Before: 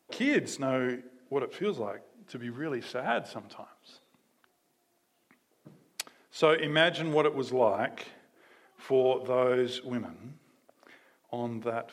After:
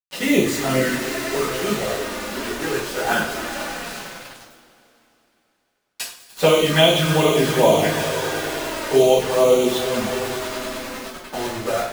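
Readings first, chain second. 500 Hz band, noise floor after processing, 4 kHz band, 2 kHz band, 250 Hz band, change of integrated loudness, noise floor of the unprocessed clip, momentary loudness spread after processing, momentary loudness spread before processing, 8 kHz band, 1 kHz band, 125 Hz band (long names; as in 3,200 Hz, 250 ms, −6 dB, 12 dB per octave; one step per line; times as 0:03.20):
+10.5 dB, −67 dBFS, +14.0 dB, +9.5 dB, +10.0 dB, +10.0 dB, −73 dBFS, 16 LU, 19 LU, +19.5 dB, +10.0 dB, +14.0 dB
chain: echo that builds up and dies away 99 ms, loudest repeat 5, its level −15.5 dB
bit reduction 6 bits
flanger swept by the level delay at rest 10.1 ms, full sweep at −22 dBFS
coupled-rooms reverb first 0.42 s, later 3.3 s, from −21 dB, DRR −8.5 dB
level +4 dB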